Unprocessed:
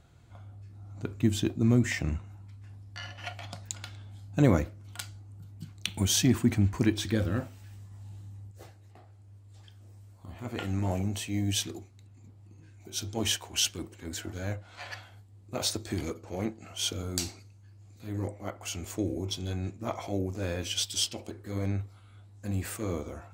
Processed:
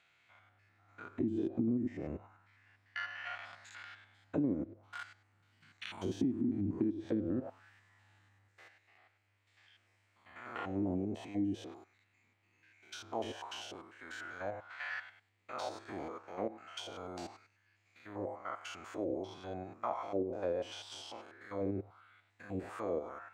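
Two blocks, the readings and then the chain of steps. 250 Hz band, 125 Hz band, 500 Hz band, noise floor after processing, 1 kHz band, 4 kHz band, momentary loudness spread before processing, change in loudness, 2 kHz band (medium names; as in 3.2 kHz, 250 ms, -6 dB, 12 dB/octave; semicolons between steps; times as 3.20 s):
-6.0 dB, -16.0 dB, -3.5 dB, -74 dBFS, -1.0 dB, -16.5 dB, 21 LU, -8.5 dB, -5.0 dB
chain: spectrogram pixelated in time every 100 ms; auto-wah 290–2400 Hz, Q 2.8, down, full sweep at -25 dBFS; compression 6:1, threshold -39 dBFS, peak gain reduction 14 dB; trim +8.5 dB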